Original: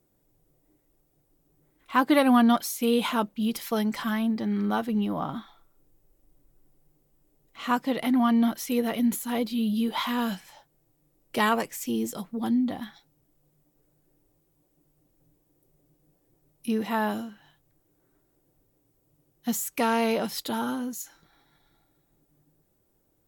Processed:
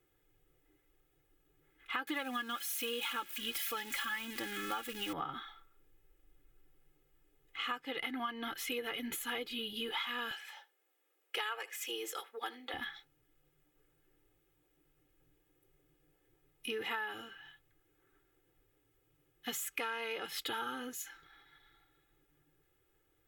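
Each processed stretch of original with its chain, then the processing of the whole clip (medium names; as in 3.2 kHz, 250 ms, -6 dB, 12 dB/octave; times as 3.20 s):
2.07–5.13 s: zero-crossing glitches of -24 dBFS + comb 3.6 ms, depth 54%
10.31–12.74 s: high-pass 430 Hz 24 dB/octave + delay 75 ms -21.5 dB
whole clip: high-order bell 2.1 kHz +11.5 dB; comb 2.4 ms, depth 85%; compression 10:1, threshold -27 dBFS; trim -8 dB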